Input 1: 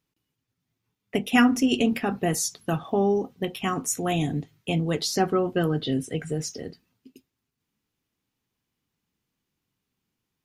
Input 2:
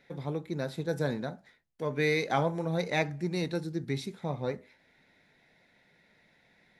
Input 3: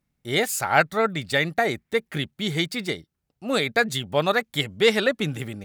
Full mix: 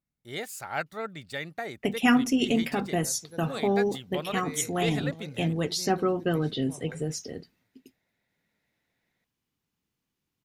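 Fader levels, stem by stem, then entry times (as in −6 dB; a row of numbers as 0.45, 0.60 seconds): −2.5, −14.5, −13.0 decibels; 0.70, 2.45, 0.00 seconds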